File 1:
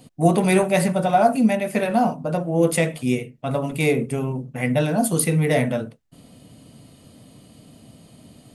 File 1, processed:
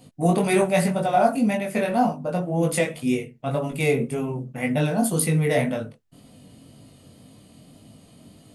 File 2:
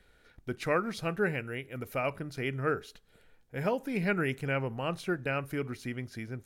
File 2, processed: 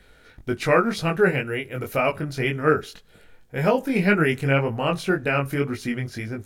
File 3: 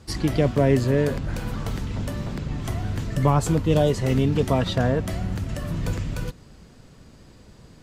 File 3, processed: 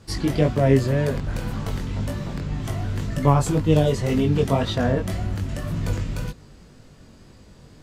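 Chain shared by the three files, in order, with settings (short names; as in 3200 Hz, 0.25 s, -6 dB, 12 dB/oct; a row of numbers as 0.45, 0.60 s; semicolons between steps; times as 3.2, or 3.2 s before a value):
chorus 1.9 Hz, delay 19 ms, depth 3.4 ms; match loudness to -23 LUFS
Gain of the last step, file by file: +1.0, +13.0, +3.5 dB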